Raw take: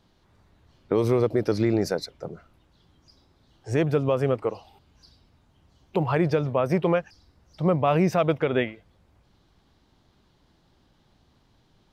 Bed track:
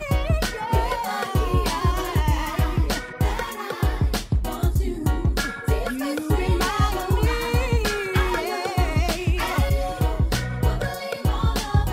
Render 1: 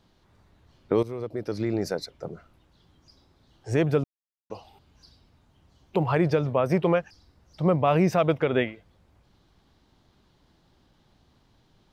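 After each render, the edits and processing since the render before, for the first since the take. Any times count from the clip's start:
0:01.03–0:02.33: fade in, from −16.5 dB
0:04.04–0:04.50: silence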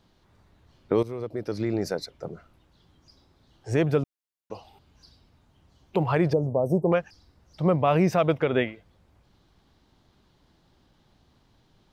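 0:06.33–0:06.92: inverse Chebyshev band-stop filter 1,700–3,600 Hz, stop band 60 dB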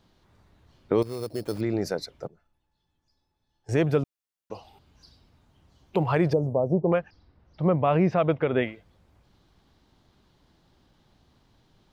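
0:01.02–0:01.61: sample-rate reduction 4,800 Hz
0:02.27–0:03.69: tuned comb filter 860 Hz, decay 0.18 s, mix 90%
0:06.64–0:08.63: high-frequency loss of the air 240 metres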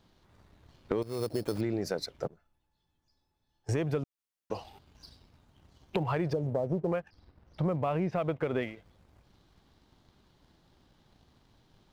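downward compressor 6 to 1, threshold −31 dBFS, peak gain reduction 13 dB
leveller curve on the samples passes 1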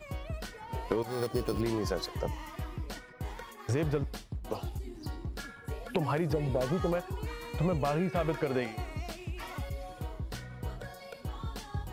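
mix in bed track −17 dB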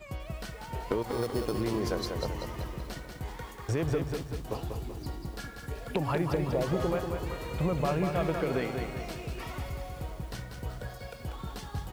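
slap from a distant wall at 140 metres, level −18 dB
feedback echo at a low word length 191 ms, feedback 55%, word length 9 bits, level −5.5 dB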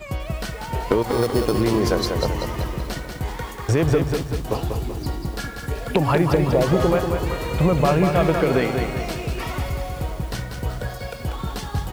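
level +11 dB

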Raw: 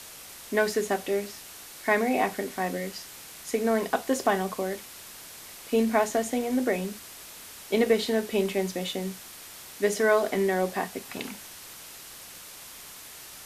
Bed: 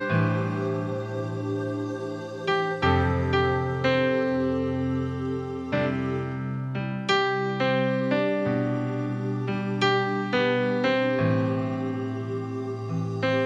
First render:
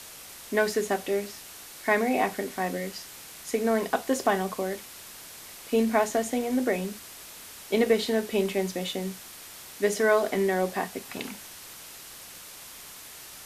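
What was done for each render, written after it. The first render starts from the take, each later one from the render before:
no processing that can be heard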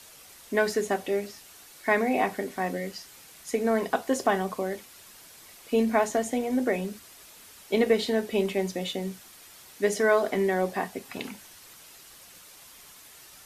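broadband denoise 7 dB, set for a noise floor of −45 dBFS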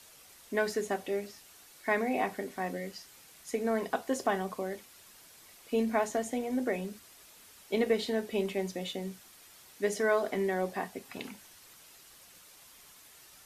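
level −5.5 dB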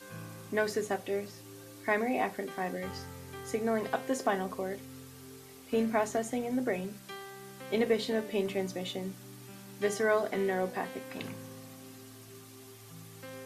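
mix in bed −22 dB

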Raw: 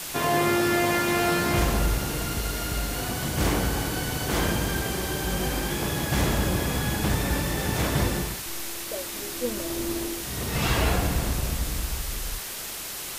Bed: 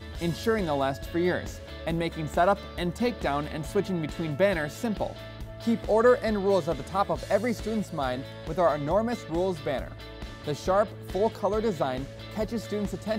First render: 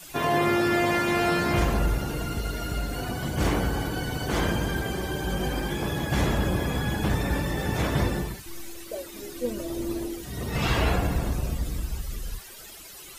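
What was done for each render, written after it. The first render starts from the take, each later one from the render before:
broadband denoise 14 dB, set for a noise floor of −35 dBFS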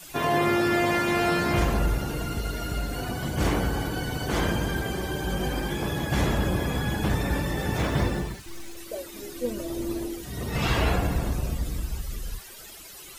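0:07.78–0:08.77: running median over 3 samples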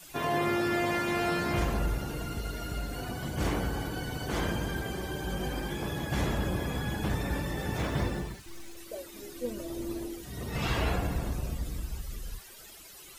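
level −5.5 dB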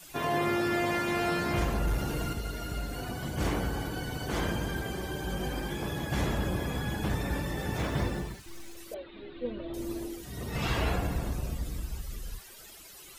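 0:01.87–0:02.33: leveller curve on the samples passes 1
0:08.94–0:09.74: Butterworth low-pass 4,000 Hz 72 dB per octave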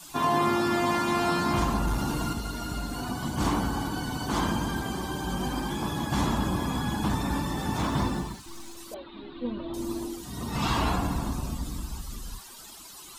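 graphic EQ with 10 bands 250 Hz +9 dB, 500 Hz −7 dB, 1,000 Hz +12 dB, 2,000 Hz −5 dB, 4,000 Hz +5 dB, 8,000 Hz +5 dB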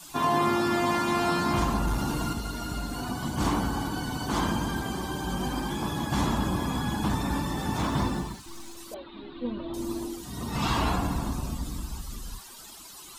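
no processing that can be heard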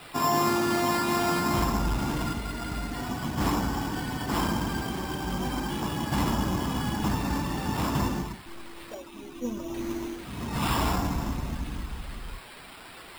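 decimation without filtering 7×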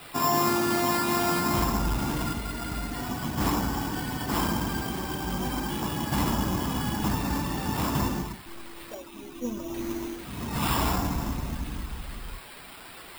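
high-shelf EQ 10,000 Hz +7.5 dB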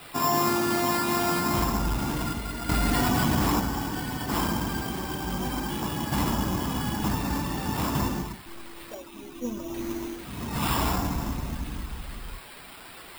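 0:02.69–0:03.60: envelope flattener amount 100%

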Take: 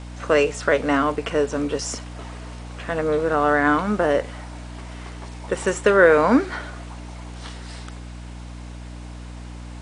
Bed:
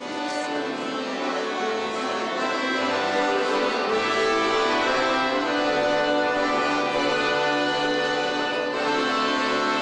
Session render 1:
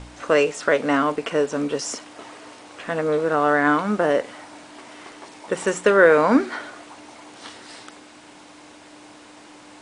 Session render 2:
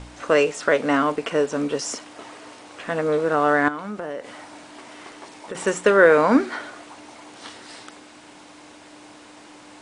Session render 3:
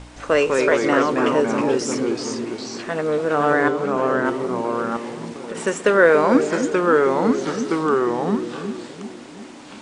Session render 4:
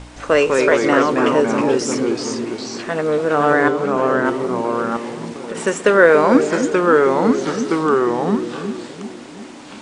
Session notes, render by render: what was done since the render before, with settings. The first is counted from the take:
hum removal 60 Hz, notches 4
0:03.68–0:05.55: downward compressor 4 to 1, threshold −29 dBFS
on a send: bucket-brigade delay 283 ms, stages 1,024, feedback 52%, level −7 dB; on the sum: delay with pitch and tempo change per echo 163 ms, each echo −2 semitones, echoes 2
level +3 dB; brickwall limiter −1 dBFS, peak gain reduction 1 dB

